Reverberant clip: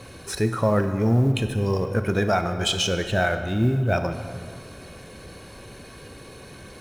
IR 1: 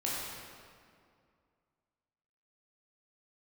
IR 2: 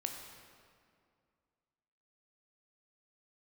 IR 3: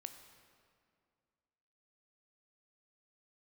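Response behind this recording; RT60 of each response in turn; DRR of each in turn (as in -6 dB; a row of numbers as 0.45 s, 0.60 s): 3; 2.3 s, 2.2 s, 2.2 s; -6.5 dB, 3.0 dB, 7.5 dB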